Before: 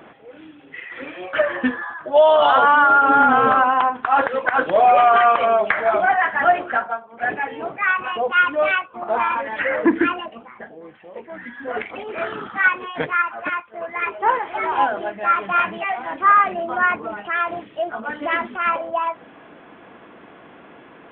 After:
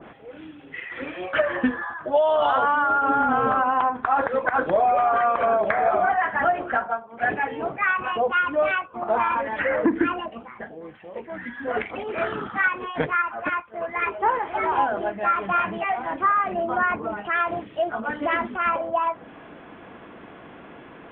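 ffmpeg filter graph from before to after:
-filter_complex "[0:a]asettb=1/sr,asplit=3[s0][s1][s2];[s0]atrim=end=3.894[s3];[s1]atrim=start=3.89:end=6.12,asetpts=PTS-STARTPTS,afade=t=in:d=0.004:c=qsin,afade=t=out:st=2.226:d=0.004:c=qsin,equalizer=f=2900:t=o:w=0.23:g=-7,aecho=1:1:938:0.335,atrim=end_sample=98343[s4];[s2]atrim=start=6.116[s5];[s3][s4]acrossfade=d=0.004:c1=hsin:c2=qsin[s6];[s6][s5]acrossfade=d=0.004:c1=qsin:c2=hsin,lowshelf=f=110:g=10.5,acompressor=threshold=0.158:ratio=10,adynamicequalizer=threshold=0.0178:dfrequency=1700:dqfactor=0.7:tfrequency=1700:tqfactor=0.7:attack=5:release=100:ratio=0.375:range=3:mode=cutabove:tftype=highshelf"

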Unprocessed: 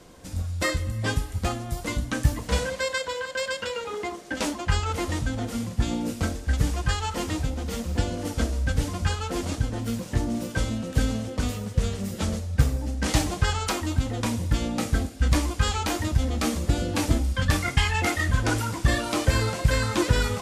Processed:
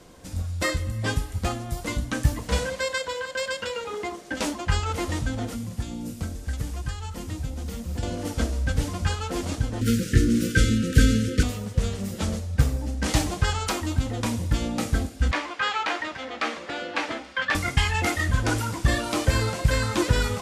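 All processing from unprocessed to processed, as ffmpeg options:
-filter_complex "[0:a]asettb=1/sr,asplit=3[s0][s1][s2];[s0]atrim=end=5.534[s3];[s1]atrim=start=5.53:end=8.03,asetpts=PTS-STARTPTS,afade=t=in:d=0.004:c=qsin,afade=t=out:st=2.496:d=0.004:c=qsin,highshelf=f=9500:g=8,acrossover=split=220|4000[s4][s5][s6];[s4]acompressor=threshold=0.0447:ratio=4[s7];[s5]acompressor=threshold=0.00891:ratio=4[s8];[s6]acompressor=threshold=0.00447:ratio=4[s9];[s7][s8][s9]amix=inputs=3:normalize=0[s10];[s2]atrim=start=8.026[s11];[s3][s10]acrossfade=d=0.004:c1=hsin:c2=qsin[s12];[s12][s11]acrossfade=d=0.004:c1=qsin:c2=hsin,asettb=1/sr,asplit=3[s13][s14][s15];[s13]atrim=end=9.814[s16];[s14]atrim=start=9.81:end=11.43,asetpts=PTS-STARTPTS,afade=t=in:d=0.004:c=qsin,afade=t=out:st=1.616:d=0.004:c=qsin,equalizer=f=1200:w=3.7:g=12.5,acontrast=80,asuperstop=centerf=850:order=12:qfactor=0.91[s17];[s15]atrim=start=11.426[s18];[s16][s17]acrossfade=d=0.004:c1=hsin:c2=qsin[s19];[s19][s18]acrossfade=d=0.004:c1=qsin:c2=hsin,asettb=1/sr,asplit=3[s20][s21][s22];[s20]atrim=end=15.314[s23];[s21]atrim=start=15.31:end=17.55,asetpts=PTS-STARTPTS,afade=t=in:d=0.004:c=qsin,afade=t=out:st=2.236:d=0.004:c=qsin,highpass=480,lowpass=3700,equalizer=f=1800:t=o:w=1.6:g=7[s24];[s22]atrim=start=17.546[s25];[s23][s24]acrossfade=d=0.004:c1=hsin:c2=qsin[s26];[s26][s25]acrossfade=d=0.004:c1=qsin:c2=hsin"

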